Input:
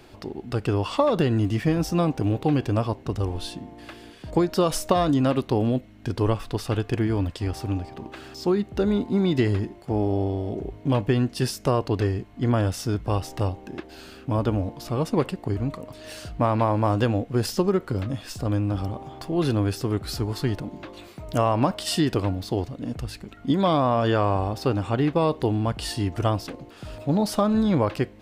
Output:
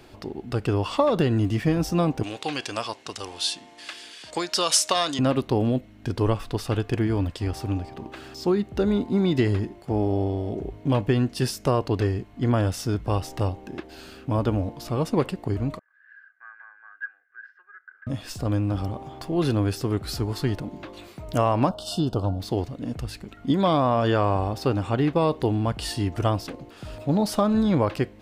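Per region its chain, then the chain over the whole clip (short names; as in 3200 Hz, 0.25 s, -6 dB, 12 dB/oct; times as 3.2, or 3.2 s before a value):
2.23–5.19 weighting filter ITU-R 468 + hard clip -8.5 dBFS
15.79–18.07 Butterworth band-pass 1600 Hz, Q 6.5 + comb 2.5 ms, depth 61%
21.69–22.4 Chebyshev band-stop 1200–3400 Hz + high shelf 3000 Hz -8 dB + comb 1.4 ms, depth 33%
whole clip: dry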